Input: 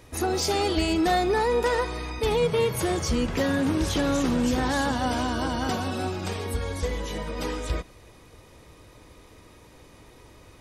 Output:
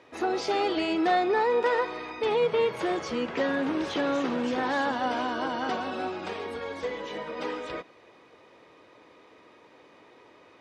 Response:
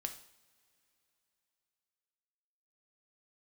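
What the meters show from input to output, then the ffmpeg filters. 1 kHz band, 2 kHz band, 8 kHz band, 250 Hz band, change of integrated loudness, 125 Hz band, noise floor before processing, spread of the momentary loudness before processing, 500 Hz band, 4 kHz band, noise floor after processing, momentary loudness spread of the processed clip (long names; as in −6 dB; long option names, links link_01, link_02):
0.0 dB, −0.5 dB, −15.0 dB, −4.5 dB, −2.5 dB, −17.0 dB, −52 dBFS, 9 LU, −1.0 dB, −5.0 dB, −56 dBFS, 11 LU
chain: -af "highpass=320,lowpass=3100"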